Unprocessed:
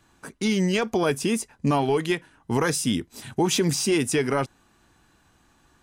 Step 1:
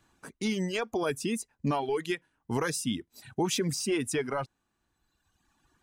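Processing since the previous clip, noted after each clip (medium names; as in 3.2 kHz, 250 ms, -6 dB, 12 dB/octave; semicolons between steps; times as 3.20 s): reverb removal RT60 1.5 s; trim -6 dB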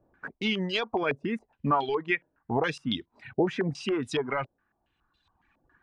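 step-sequenced low-pass 7.2 Hz 570–3800 Hz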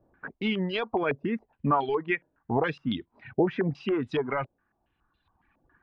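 distance through air 330 m; trim +2 dB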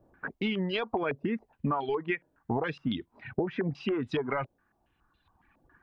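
compression 6:1, threshold -29 dBFS, peak gain reduction 10.5 dB; trim +2.5 dB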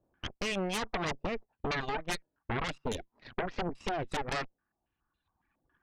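Chebyshev shaper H 3 -10 dB, 5 -22 dB, 8 -9 dB, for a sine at -16 dBFS; trim -5 dB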